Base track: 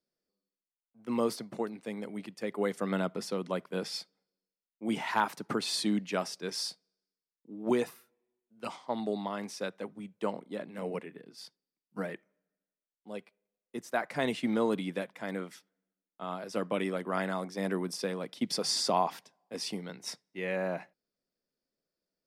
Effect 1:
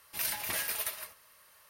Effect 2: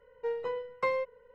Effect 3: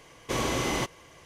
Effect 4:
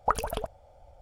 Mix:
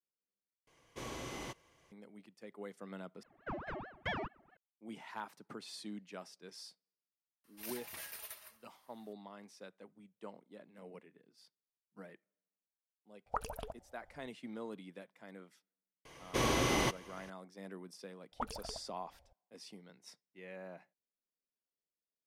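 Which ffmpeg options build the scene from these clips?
-filter_complex "[3:a]asplit=2[s0][s1];[4:a]asplit=2[s2][s3];[0:a]volume=0.158[s4];[2:a]aeval=exprs='val(0)*sin(2*PI*680*n/s+680*0.85/4.6*sin(2*PI*4.6*n/s))':c=same[s5];[s1]bandreject=f=7400:w=6.3[s6];[s4]asplit=3[s7][s8][s9];[s7]atrim=end=0.674[s10];[s0]atrim=end=1.25,asetpts=PTS-STARTPTS,volume=0.158[s11];[s8]atrim=start=1.916:end=3.234[s12];[s5]atrim=end=1.34,asetpts=PTS-STARTPTS,volume=0.501[s13];[s9]atrim=start=4.566[s14];[1:a]atrim=end=1.69,asetpts=PTS-STARTPTS,volume=0.211,afade=t=in:d=0.004:c=hsin,afade=t=out:st=1.686:d=0.004:c=hsin,adelay=7440[s15];[s2]atrim=end=1.01,asetpts=PTS-STARTPTS,volume=0.251,afade=t=in:d=0.004:c=hsin,afade=t=out:st=1.006:d=0.004:c=hsin,adelay=13260[s16];[s6]atrim=end=1.25,asetpts=PTS-STARTPTS,volume=0.708,afade=t=in:d=0.004:c=hsin,afade=t=out:st=1.246:d=0.004:c=hsin,adelay=16050[s17];[s3]atrim=end=1.01,asetpts=PTS-STARTPTS,volume=0.178,afade=t=in:d=0.004:c=hsin,afade=t=out:st=1.006:d=0.004:c=hsin,adelay=18320[s18];[s10][s11]acrossfade=d=0.004:c1=hsin:c2=hsin[s19];[s19][s12]acrossfade=d=0.004:c1=hsin:c2=hsin[s20];[s20][s13]acrossfade=d=0.004:c1=hsin:c2=hsin[s21];[s21][s14]acrossfade=d=0.004:c1=hsin:c2=hsin[s22];[s22][s15][s16][s17][s18]amix=inputs=5:normalize=0"

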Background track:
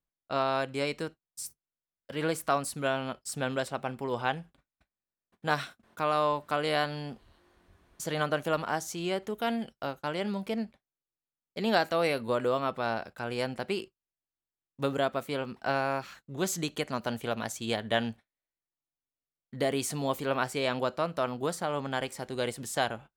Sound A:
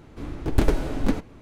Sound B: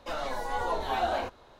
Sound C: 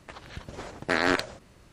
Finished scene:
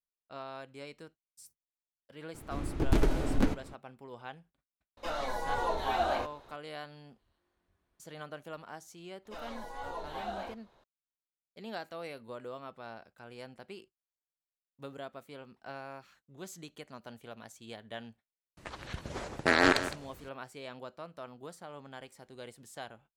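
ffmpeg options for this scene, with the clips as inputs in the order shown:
-filter_complex "[2:a]asplit=2[s0][s1];[0:a]volume=0.178[s2];[1:a]asoftclip=type=tanh:threshold=0.211[s3];[3:a]aecho=1:1:161:0.237[s4];[s3]atrim=end=1.41,asetpts=PTS-STARTPTS,volume=0.75,afade=t=in:d=0.004:c=hsin,afade=t=out:st=1.406:d=0.004:c=hsin,adelay=2340[s5];[s0]atrim=end=1.59,asetpts=PTS-STARTPTS,volume=0.841,afade=t=in:d=0.004:c=hsin,afade=t=out:st=1.586:d=0.004:c=hsin,adelay=219177S[s6];[s1]atrim=end=1.59,asetpts=PTS-STARTPTS,volume=0.299,afade=t=in:d=0.004:c=hsin,afade=t=out:st=1.586:d=0.004:c=hsin,adelay=9250[s7];[s4]atrim=end=1.72,asetpts=PTS-STARTPTS,afade=t=in:d=0.004:c=hsin,afade=t=out:st=1.716:d=0.004:c=hsin,adelay=18570[s8];[s2][s5][s6][s7][s8]amix=inputs=5:normalize=0"

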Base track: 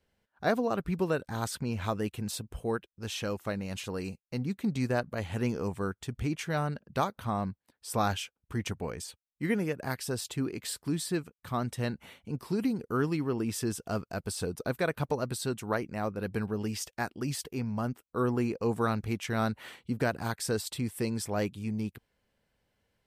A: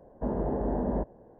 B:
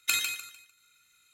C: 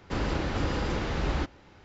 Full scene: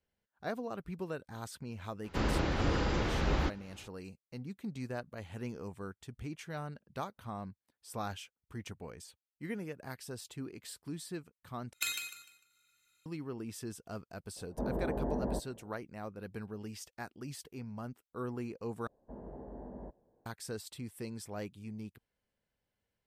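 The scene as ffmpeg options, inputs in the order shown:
-filter_complex "[1:a]asplit=2[s0][s1];[0:a]volume=0.299[s2];[2:a]asplit=2[s3][s4];[s4]adelay=165,lowpass=f=2000:p=1,volume=0.0944,asplit=2[s5][s6];[s6]adelay=165,lowpass=f=2000:p=1,volume=0.42,asplit=2[s7][s8];[s8]adelay=165,lowpass=f=2000:p=1,volume=0.42[s9];[s3][s5][s7][s9]amix=inputs=4:normalize=0[s10];[s2]asplit=3[s11][s12][s13];[s11]atrim=end=11.734[s14];[s10]atrim=end=1.33,asetpts=PTS-STARTPTS,volume=0.398[s15];[s12]atrim=start=13.056:end=18.874[s16];[s1]atrim=end=1.39,asetpts=PTS-STARTPTS,volume=0.133[s17];[s13]atrim=start=20.256[s18];[3:a]atrim=end=1.84,asetpts=PTS-STARTPTS,volume=0.794,afade=t=in:d=0.004:c=hsin,afade=t=out:st=1.836:d=0.004:c=hsin,adelay=2040[s19];[s0]atrim=end=1.39,asetpts=PTS-STARTPTS,volume=0.531,afade=t=in:d=0.004:c=hsin,afade=t=out:st=1.386:d=0.004:c=hsin,adelay=14360[s20];[s14][s15]acrossfade=d=0.004:c1=hsin:c2=hsin[s21];[s21][s16]acrossfade=d=0.004:c1=hsin:c2=hsin[s22];[s22][s17]acrossfade=d=0.004:c1=hsin:c2=hsin[s23];[s23][s18]acrossfade=d=0.004:c1=hsin:c2=hsin[s24];[s24][s19][s20]amix=inputs=3:normalize=0"

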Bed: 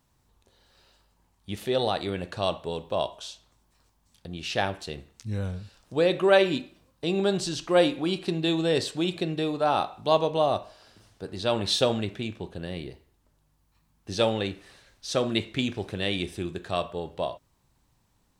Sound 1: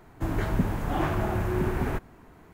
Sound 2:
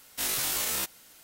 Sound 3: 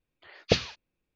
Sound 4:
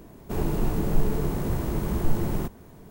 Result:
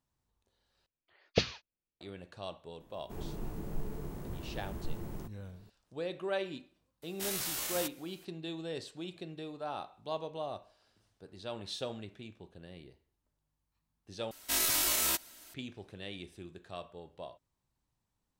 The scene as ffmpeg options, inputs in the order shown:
-filter_complex "[2:a]asplit=2[s0][s1];[0:a]volume=0.168[s2];[3:a]agate=range=0.316:threshold=0.00794:ratio=3:release=101:detection=peak[s3];[s1]aecho=1:1:3.1:0.49[s4];[s2]asplit=3[s5][s6][s7];[s5]atrim=end=0.864[s8];[s3]atrim=end=1.15,asetpts=PTS-STARTPTS,volume=0.531[s9];[s6]atrim=start=2.006:end=14.314[s10];[s4]atrim=end=1.23,asetpts=PTS-STARTPTS,volume=0.891[s11];[s7]atrim=start=15.536[s12];[4:a]atrim=end=2.9,asetpts=PTS-STARTPTS,volume=0.178,afade=t=in:d=0.004:c=hsin,afade=t=out:st=2.896:d=0.004:c=hsin,adelay=2800[s13];[s0]atrim=end=1.23,asetpts=PTS-STARTPTS,volume=0.422,afade=t=in:d=0.004:c=hsin,afade=t=out:st=1.226:d=0.004:c=hsin,adelay=7020[s14];[s8][s9]acrossfade=d=0.004:c1=hsin:c2=hsin[s15];[s15][s10]acrossfade=d=0.004:c1=hsin:c2=hsin[s16];[s16][s11]acrossfade=d=0.004:c1=hsin:c2=hsin[s17];[s17][s12]acrossfade=d=0.004:c1=hsin:c2=hsin[s18];[s18][s13][s14]amix=inputs=3:normalize=0"

